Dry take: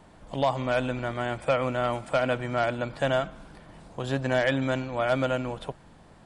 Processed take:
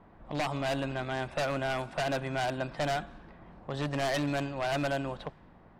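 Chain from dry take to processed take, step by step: wavefolder -21 dBFS; varispeed +8%; low-pass opened by the level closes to 1700 Hz, open at -23.5 dBFS; gain -3 dB

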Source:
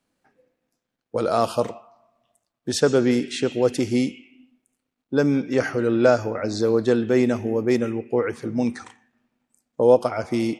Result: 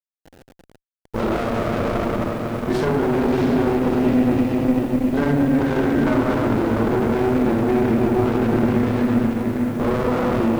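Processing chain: dynamic EQ 500 Hz, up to -7 dB, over -33 dBFS, Q 2.5; LPF 3000 Hz 12 dB/oct; high shelf 2100 Hz +6 dB; notches 60/120/180/240/300 Hz; shoebox room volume 120 m³, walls hard, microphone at 1.2 m; treble ducked by the level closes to 1800 Hz, closed at -11 dBFS; limiter -15 dBFS, peak gain reduction 15.5 dB; diffused feedback echo 0.676 s, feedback 43%, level -7.5 dB; treble ducked by the level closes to 2200 Hz, closed at -13.5 dBFS; requantised 8-bit, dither none; running maximum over 33 samples; gain +4 dB

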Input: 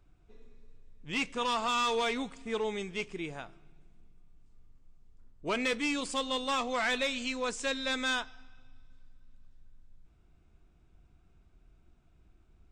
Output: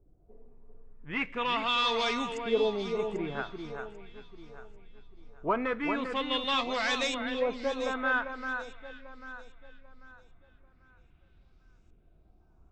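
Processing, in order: in parallel at -2.5 dB: vocal rider 0.5 s; on the sum: LFO low-pass saw up 0.42 Hz 450–7200 Hz; echo with dull and thin repeats by turns 0.396 s, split 2100 Hz, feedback 56%, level -6 dB; gain -5 dB

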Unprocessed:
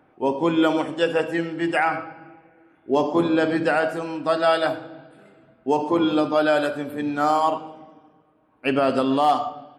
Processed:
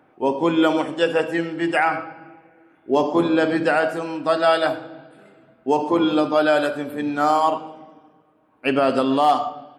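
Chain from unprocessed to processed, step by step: low shelf 84 Hz -9 dB; gain +2 dB

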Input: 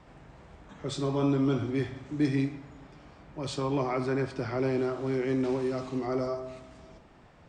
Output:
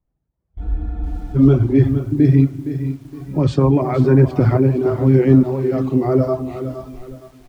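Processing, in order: random-step tremolo; spectral noise reduction 20 dB; on a send: echo 0.503 s -18.5 dB; on the sum: spring tank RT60 1.3 s, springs 52 ms, chirp 75 ms, DRR 13.5 dB; in parallel at +2 dB: compressor 4:1, threshold -42 dBFS, peak gain reduction 15 dB; on the sum: gate -60 dBFS, range -21 dB; tilt -4 dB/oct; AGC gain up to 6 dB; reverb removal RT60 1.1 s; spectral freeze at 0.63, 0.73 s; lo-fi delay 0.465 s, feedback 35%, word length 8-bit, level -11 dB; gain +4 dB

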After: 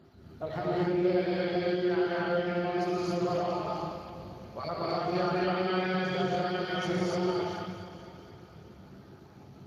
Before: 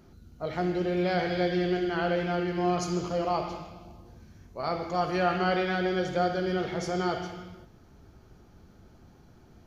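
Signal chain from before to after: random spectral dropouts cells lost 25%; compressor 5:1, threshold -33 dBFS, peak gain reduction 10.5 dB; 0.94–3.1 notch comb 150 Hz; echo with dull and thin repeats by turns 0.115 s, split 1000 Hz, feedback 81%, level -10.5 dB; non-linear reverb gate 0.31 s rising, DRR -5.5 dB; Speex 24 kbps 32000 Hz

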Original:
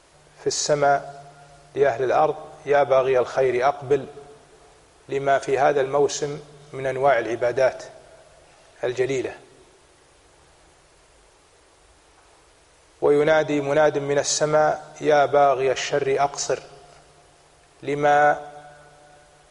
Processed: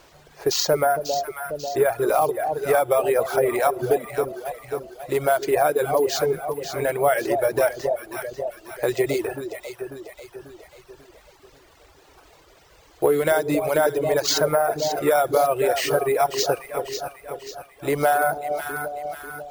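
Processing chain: sample-and-hold 4×; echo with dull and thin repeats by turns 0.271 s, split 810 Hz, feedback 68%, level -6 dB; compressor 2:1, threshold -21 dBFS, peak gain reduction 5.5 dB; reverb removal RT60 1.1 s; gain +3.5 dB

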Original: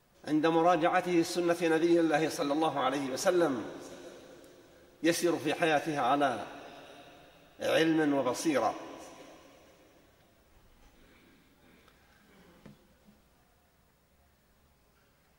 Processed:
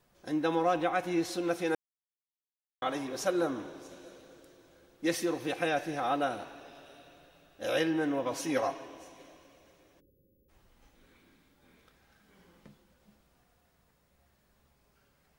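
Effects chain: 1.75–2.82 mute; 8.31–8.86 comb 7.4 ms, depth 62%; 10–10.49 spectral delete 570–11000 Hz; gain -2.5 dB

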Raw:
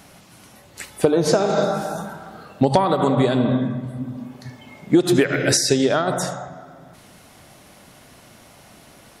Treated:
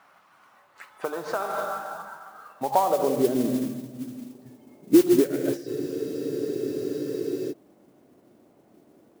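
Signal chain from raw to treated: band-pass sweep 1200 Hz -> 340 Hz, 2.55–3.28; modulation noise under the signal 18 dB; spectral freeze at 5.69, 1.83 s

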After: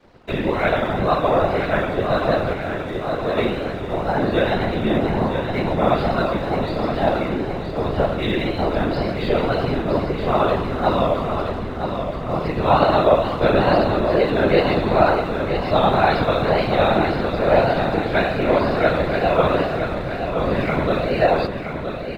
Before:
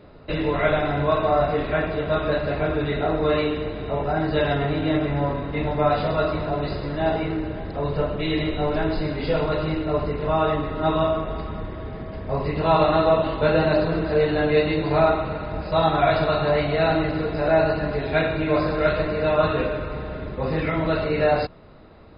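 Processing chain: wow and flutter 90 cents; 2.53–3.37 resonator 57 Hz, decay 0.31 s, harmonics all, mix 100%; crossover distortion -49 dBFS; whisperiser; on a send: feedback echo 0.97 s, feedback 53%, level -7.5 dB; on the sum: gain +2.5 dB

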